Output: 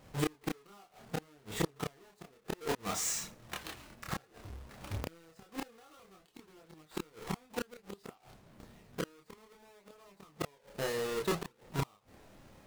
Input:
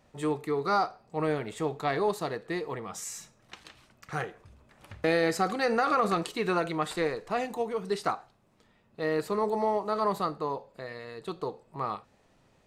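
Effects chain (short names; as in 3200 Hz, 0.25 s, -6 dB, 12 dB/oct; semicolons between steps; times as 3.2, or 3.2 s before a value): half-waves squared off; compressor 2.5:1, threshold -26 dBFS, peak gain reduction 6.5 dB; flipped gate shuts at -25 dBFS, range -34 dB; chorus voices 2, 0.3 Hz, delay 28 ms, depth 2.6 ms; gain +5 dB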